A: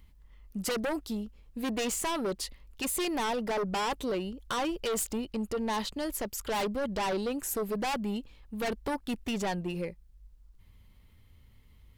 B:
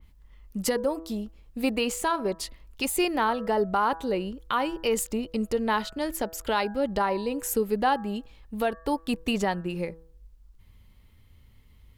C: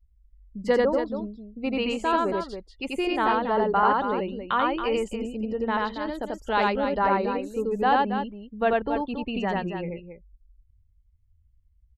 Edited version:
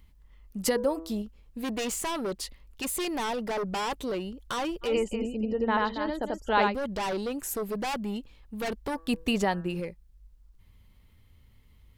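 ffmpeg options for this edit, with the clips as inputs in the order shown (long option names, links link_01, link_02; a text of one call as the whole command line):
ffmpeg -i take0.wav -i take1.wav -i take2.wav -filter_complex "[1:a]asplit=2[link_01][link_02];[0:a]asplit=4[link_03][link_04][link_05][link_06];[link_03]atrim=end=0.632[link_07];[link_01]atrim=start=0.628:end=1.222[link_08];[link_04]atrim=start=1.218:end=4.97[link_09];[2:a]atrim=start=4.81:end=6.78[link_10];[link_05]atrim=start=6.62:end=8.962[link_11];[link_02]atrim=start=8.958:end=9.802[link_12];[link_06]atrim=start=9.798[link_13];[link_07][link_08]acrossfade=duration=0.004:curve1=hsin:curve2=hsin[link_14];[link_14][link_09]acrossfade=duration=0.004:curve1=hsin:curve2=hsin[link_15];[link_15][link_10]acrossfade=duration=0.16:curve1=tri:curve2=tri[link_16];[link_16][link_11]acrossfade=duration=0.16:curve1=tri:curve2=tri[link_17];[link_17][link_12]acrossfade=duration=0.004:curve1=hsin:curve2=hsin[link_18];[link_18][link_13]acrossfade=duration=0.004:curve1=hsin:curve2=hsin" out.wav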